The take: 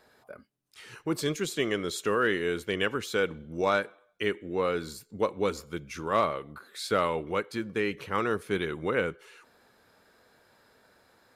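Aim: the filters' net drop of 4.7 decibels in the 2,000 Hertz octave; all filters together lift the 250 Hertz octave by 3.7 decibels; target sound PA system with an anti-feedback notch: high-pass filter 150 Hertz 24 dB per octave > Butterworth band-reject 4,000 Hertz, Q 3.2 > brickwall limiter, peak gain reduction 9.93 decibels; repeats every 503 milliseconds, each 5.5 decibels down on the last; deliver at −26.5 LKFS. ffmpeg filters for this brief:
ffmpeg -i in.wav -af "highpass=frequency=150:width=0.5412,highpass=frequency=150:width=1.3066,asuperstop=centerf=4000:order=8:qfactor=3.2,equalizer=frequency=250:width_type=o:gain=5.5,equalizer=frequency=2000:width_type=o:gain=-6.5,aecho=1:1:503|1006|1509|2012|2515|3018|3521:0.531|0.281|0.149|0.079|0.0419|0.0222|0.0118,volume=6dB,alimiter=limit=-16dB:level=0:latency=1" out.wav

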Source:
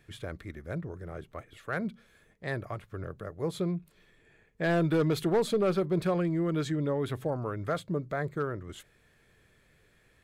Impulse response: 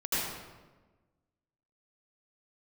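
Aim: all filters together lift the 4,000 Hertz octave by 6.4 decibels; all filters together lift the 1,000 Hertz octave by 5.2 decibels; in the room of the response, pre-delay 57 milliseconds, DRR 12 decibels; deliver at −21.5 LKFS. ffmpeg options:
-filter_complex "[0:a]equalizer=frequency=1000:width_type=o:gain=7,equalizer=frequency=4000:width_type=o:gain=7,asplit=2[link_01][link_02];[1:a]atrim=start_sample=2205,adelay=57[link_03];[link_02][link_03]afir=irnorm=-1:irlink=0,volume=-21dB[link_04];[link_01][link_04]amix=inputs=2:normalize=0,volume=8.5dB"

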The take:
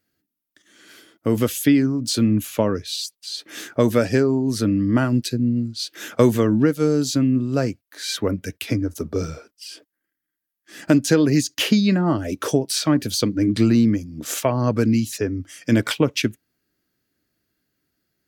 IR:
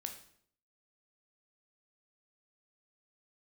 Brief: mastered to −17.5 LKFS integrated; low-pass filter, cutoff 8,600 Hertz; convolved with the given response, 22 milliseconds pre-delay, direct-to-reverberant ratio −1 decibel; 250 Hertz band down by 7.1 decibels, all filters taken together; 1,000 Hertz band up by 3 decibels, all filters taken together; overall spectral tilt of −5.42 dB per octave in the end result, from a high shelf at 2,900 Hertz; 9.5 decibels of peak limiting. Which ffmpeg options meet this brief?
-filter_complex "[0:a]lowpass=8600,equalizer=frequency=250:width_type=o:gain=-9,equalizer=frequency=1000:width_type=o:gain=5.5,highshelf=frequency=2900:gain=-8,alimiter=limit=-13dB:level=0:latency=1,asplit=2[link_01][link_02];[1:a]atrim=start_sample=2205,adelay=22[link_03];[link_02][link_03]afir=irnorm=-1:irlink=0,volume=3dB[link_04];[link_01][link_04]amix=inputs=2:normalize=0,volume=6dB"

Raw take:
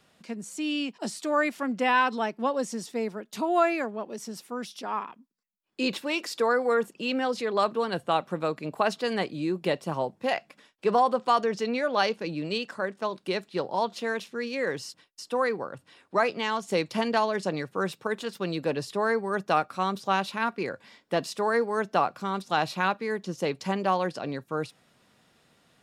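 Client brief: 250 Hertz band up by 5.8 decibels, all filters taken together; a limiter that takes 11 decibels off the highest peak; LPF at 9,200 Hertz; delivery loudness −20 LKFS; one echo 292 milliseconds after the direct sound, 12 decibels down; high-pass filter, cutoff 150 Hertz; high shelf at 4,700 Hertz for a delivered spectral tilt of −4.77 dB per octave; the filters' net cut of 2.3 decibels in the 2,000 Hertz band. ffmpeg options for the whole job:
ffmpeg -i in.wav -af "highpass=150,lowpass=9200,equalizer=frequency=250:width_type=o:gain=8,equalizer=frequency=2000:width_type=o:gain=-4.5,highshelf=frequency=4700:gain=6.5,alimiter=limit=-21.5dB:level=0:latency=1,aecho=1:1:292:0.251,volume=11.5dB" out.wav

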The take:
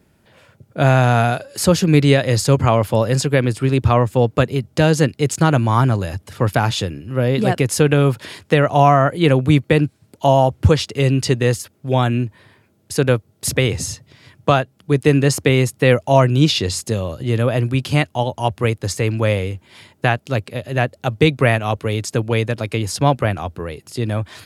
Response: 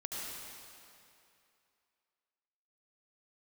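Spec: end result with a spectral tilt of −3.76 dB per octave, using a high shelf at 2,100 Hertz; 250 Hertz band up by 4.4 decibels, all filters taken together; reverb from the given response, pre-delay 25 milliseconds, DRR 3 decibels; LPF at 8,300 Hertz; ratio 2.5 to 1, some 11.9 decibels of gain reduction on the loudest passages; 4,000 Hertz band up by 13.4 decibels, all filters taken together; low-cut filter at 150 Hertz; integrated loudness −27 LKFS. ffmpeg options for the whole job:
-filter_complex "[0:a]highpass=150,lowpass=8300,equalizer=frequency=250:width_type=o:gain=6.5,highshelf=frequency=2100:gain=8.5,equalizer=frequency=4000:width_type=o:gain=9,acompressor=threshold=-21dB:ratio=2.5,asplit=2[link_01][link_02];[1:a]atrim=start_sample=2205,adelay=25[link_03];[link_02][link_03]afir=irnorm=-1:irlink=0,volume=-5dB[link_04];[link_01][link_04]amix=inputs=2:normalize=0,volume=-6.5dB"

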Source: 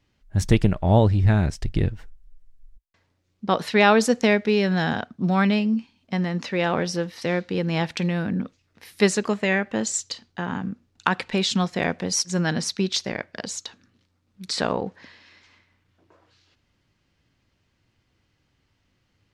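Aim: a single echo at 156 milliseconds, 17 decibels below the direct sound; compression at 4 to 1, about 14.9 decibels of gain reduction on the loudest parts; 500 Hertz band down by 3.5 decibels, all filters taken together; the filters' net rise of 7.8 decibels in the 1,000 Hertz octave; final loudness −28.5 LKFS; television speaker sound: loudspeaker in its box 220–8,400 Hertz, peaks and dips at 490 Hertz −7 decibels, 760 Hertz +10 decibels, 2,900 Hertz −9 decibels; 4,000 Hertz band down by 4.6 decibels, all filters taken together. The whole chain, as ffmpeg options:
ffmpeg -i in.wav -af "equalizer=frequency=500:width_type=o:gain=-5.5,equalizer=frequency=1000:width_type=o:gain=5.5,equalizer=frequency=4000:width_type=o:gain=-3.5,acompressor=threshold=-30dB:ratio=4,highpass=frequency=220:width=0.5412,highpass=frequency=220:width=1.3066,equalizer=frequency=490:width_type=q:width=4:gain=-7,equalizer=frequency=760:width_type=q:width=4:gain=10,equalizer=frequency=2900:width_type=q:width=4:gain=-9,lowpass=frequency=8400:width=0.5412,lowpass=frequency=8400:width=1.3066,aecho=1:1:156:0.141,volume=6dB" out.wav

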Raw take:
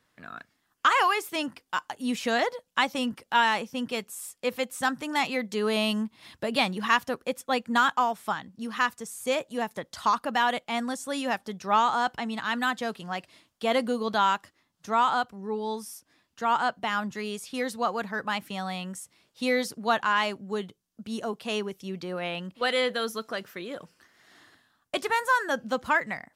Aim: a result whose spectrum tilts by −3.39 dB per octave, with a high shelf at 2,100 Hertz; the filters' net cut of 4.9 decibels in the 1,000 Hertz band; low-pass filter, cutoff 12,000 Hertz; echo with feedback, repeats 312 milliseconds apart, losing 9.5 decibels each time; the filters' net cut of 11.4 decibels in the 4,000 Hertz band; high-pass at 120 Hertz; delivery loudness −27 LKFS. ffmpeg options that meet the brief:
ffmpeg -i in.wav -af "highpass=120,lowpass=12000,equalizer=frequency=1000:width_type=o:gain=-4,highshelf=frequency=2100:gain=-7,equalizer=frequency=4000:width_type=o:gain=-9,aecho=1:1:312|624|936|1248:0.335|0.111|0.0365|0.012,volume=4.5dB" out.wav

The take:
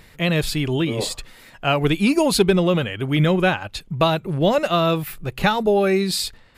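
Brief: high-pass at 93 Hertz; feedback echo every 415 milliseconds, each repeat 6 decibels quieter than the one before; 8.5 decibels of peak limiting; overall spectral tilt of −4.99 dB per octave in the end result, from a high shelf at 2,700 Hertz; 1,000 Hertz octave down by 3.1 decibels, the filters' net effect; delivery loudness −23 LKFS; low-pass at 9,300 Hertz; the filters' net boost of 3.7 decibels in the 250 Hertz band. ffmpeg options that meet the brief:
ffmpeg -i in.wav -af "highpass=93,lowpass=9300,equalizer=frequency=250:width_type=o:gain=6,equalizer=frequency=1000:width_type=o:gain=-5.5,highshelf=frequency=2700:gain=4.5,alimiter=limit=-10dB:level=0:latency=1,aecho=1:1:415|830|1245|1660|2075|2490:0.501|0.251|0.125|0.0626|0.0313|0.0157,volume=-3.5dB" out.wav

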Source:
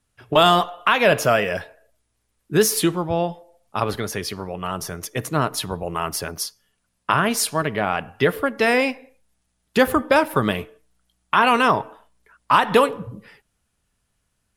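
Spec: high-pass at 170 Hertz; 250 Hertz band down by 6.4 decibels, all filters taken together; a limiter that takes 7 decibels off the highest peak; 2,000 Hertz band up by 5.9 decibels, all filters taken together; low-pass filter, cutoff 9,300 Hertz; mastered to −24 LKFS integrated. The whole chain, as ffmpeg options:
ffmpeg -i in.wav -af "highpass=170,lowpass=9300,equalizer=frequency=250:width_type=o:gain=-7.5,equalizer=frequency=2000:width_type=o:gain=8,volume=-2.5dB,alimiter=limit=-9dB:level=0:latency=1" out.wav

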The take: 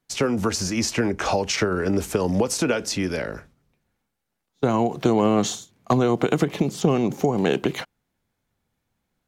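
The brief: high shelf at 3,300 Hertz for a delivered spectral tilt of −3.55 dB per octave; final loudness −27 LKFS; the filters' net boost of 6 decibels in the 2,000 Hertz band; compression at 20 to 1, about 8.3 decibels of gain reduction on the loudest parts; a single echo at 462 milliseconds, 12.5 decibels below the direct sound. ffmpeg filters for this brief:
ffmpeg -i in.wav -af "equalizer=frequency=2000:width_type=o:gain=6.5,highshelf=frequency=3300:gain=4.5,acompressor=threshold=-22dB:ratio=20,aecho=1:1:462:0.237,volume=0.5dB" out.wav

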